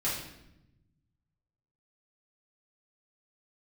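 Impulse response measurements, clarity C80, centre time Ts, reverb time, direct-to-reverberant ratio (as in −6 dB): 6.0 dB, 51 ms, 0.85 s, −9.0 dB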